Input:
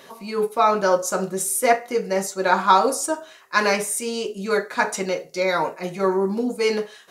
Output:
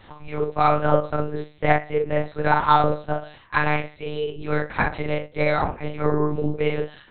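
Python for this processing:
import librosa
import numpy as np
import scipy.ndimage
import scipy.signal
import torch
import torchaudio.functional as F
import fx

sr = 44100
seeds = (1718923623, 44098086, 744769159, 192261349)

y = fx.room_early_taps(x, sr, ms=(11, 44, 55), db=(-12.5, -3.5, -12.0))
y = fx.lpc_monotone(y, sr, seeds[0], pitch_hz=150.0, order=8)
y = y * librosa.db_to_amplitude(-2.0)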